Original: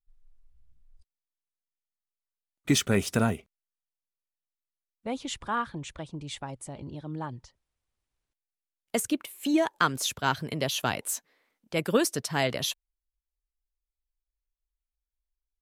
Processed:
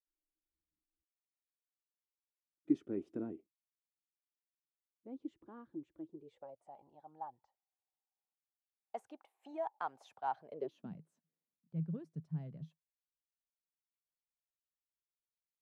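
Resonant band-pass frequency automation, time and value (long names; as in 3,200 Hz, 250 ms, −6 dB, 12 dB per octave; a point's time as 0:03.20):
resonant band-pass, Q 9.5
0:06.05 320 Hz
0:06.72 790 Hz
0:10.40 790 Hz
0:10.96 160 Hz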